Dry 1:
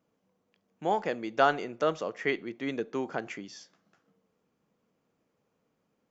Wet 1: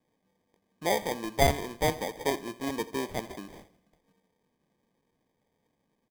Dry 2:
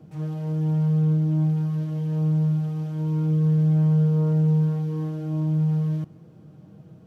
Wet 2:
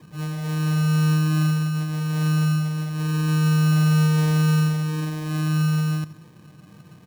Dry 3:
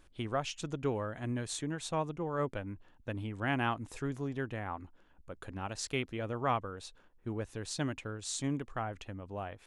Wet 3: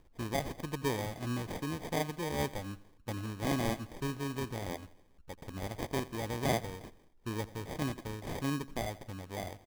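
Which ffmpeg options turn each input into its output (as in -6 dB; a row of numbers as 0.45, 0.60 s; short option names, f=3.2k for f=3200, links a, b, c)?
-af "acrusher=samples=32:mix=1:aa=0.000001,aecho=1:1:84|168|252|336:0.112|0.0516|0.0237|0.0109"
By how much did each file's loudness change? +0.5, +1.5, 0.0 LU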